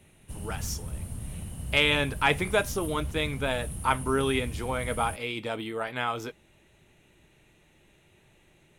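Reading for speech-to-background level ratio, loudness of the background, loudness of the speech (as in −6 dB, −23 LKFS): 10.0 dB, −38.5 LKFS, −28.5 LKFS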